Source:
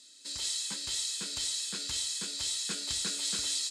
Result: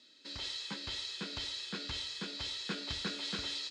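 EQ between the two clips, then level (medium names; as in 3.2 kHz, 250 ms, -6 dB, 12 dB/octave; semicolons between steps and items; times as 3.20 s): distance through air 270 m; +4.0 dB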